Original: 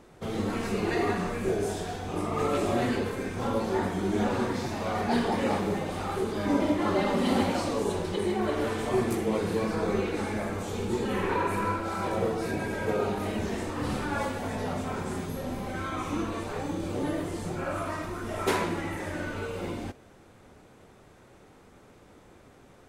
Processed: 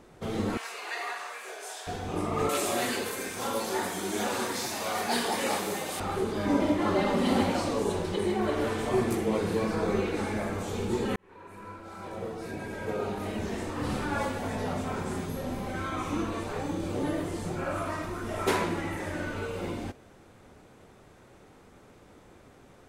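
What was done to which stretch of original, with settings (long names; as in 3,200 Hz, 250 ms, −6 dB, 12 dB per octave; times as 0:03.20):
0:00.57–0:01.87: Bessel high-pass filter 1,000 Hz, order 4
0:02.49–0:06.00: RIAA equalisation recording
0:11.16–0:14.08: fade in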